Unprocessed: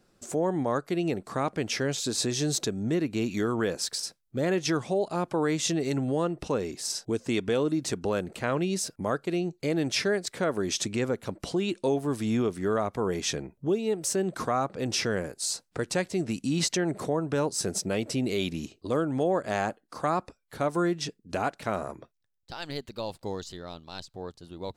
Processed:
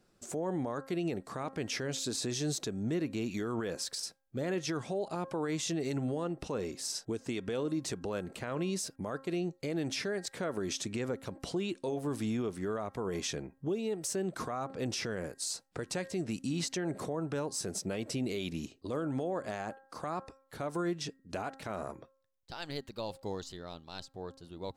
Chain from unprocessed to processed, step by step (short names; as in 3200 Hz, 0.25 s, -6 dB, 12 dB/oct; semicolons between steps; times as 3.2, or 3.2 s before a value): de-hum 268 Hz, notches 7; limiter -22 dBFS, peak gain reduction 8 dB; gain -4 dB